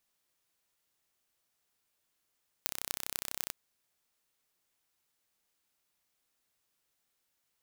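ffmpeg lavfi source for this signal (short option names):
-f lavfi -i "aevalsrc='0.668*eq(mod(n,1374),0)*(0.5+0.5*eq(mod(n,10992),0))':d=0.85:s=44100"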